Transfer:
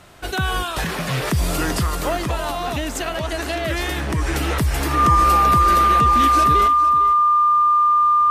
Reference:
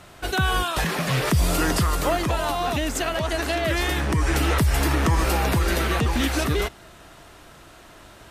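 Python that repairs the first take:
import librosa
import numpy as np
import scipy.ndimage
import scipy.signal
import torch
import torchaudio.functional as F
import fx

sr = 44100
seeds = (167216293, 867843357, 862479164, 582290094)

y = fx.notch(x, sr, hz=1200.0, q=30.0)
y = fx.fix_echo_inverse(y, sr, delay_ms=454, level_db=-15.0)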